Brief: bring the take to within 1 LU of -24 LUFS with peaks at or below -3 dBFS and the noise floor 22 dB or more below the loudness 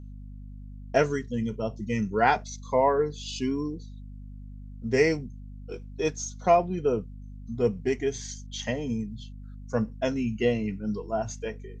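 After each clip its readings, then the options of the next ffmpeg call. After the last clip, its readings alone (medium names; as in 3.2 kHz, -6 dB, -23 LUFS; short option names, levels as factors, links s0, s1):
hum 50 Hz; highest harmonic 250 Hz; hum level -39 dBFS; loudness -28.0 LUFS; peak level -8.0 dBFS; loudness target -24.0 LUFS
-> -af "bandreject=f=50:t=h:w=4,bandreject=f=100:t=h:w=4,bandreject=f=150:t=h:w=4,bandreject=f=200:t=h:w=4,bandreject=f=250:t=h:w=4"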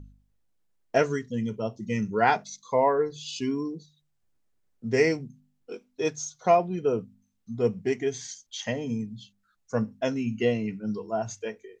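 hum not found; loudness -28.0 LUFS; peak level -8.0 dBFS; loudness target -24.0 LUFS
-> -af "volume=1.58"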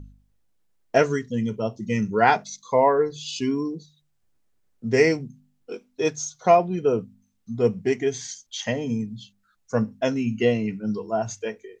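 loudness -24.0 LUFS; peak level -4.0 dBFS; noise floor -69 dBFS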